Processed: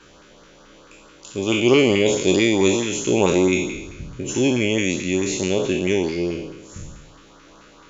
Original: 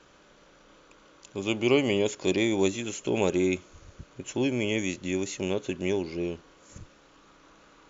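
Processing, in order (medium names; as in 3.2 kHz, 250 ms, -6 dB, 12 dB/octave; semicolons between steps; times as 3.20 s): spectral sustain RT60 1.08 s; LFO notch saw up 4.6 Hz 540–2800 Hz; trim +7 dB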